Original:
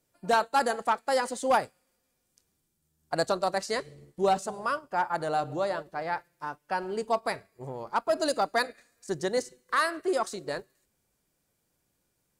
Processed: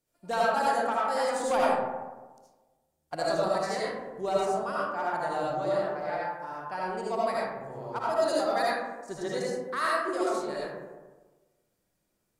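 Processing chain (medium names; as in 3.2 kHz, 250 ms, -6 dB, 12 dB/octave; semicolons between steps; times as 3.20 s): 1.30–3.16 s: waveshaping leveller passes 1; algorithmic reverb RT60 1.3 s, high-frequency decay 0.35×, pre-delay 35 ms, DRR -6.5 dB; trim -8 dB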